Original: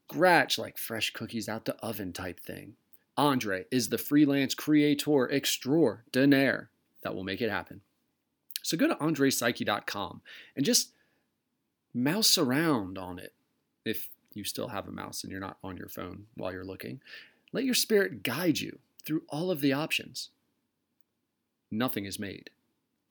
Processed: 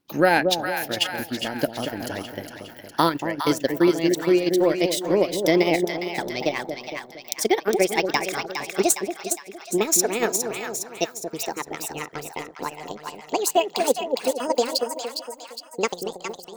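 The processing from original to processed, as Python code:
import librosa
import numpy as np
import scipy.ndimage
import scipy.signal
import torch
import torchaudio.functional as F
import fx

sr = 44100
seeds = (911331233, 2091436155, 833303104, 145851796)

p1 = fx.speed_glide(x, sr, from_pct=99, to_pct=180)
p2 = fx.transient(p1, sr, attack_db=7, sustain_db=-11)
p3 = fx.echo_split(p2, sr, split_hz=810.0, low_ms=231, high_ms=410, feedback_pct=52, wet_db=-5.5)
p4 = fx.level_steps(p3, sr, step_db=12)
p5 = p3 + (p4 * librosa.db_to_amplitude(-1.0))
y = p5 * librosa.db_to_amplitude(-1.5)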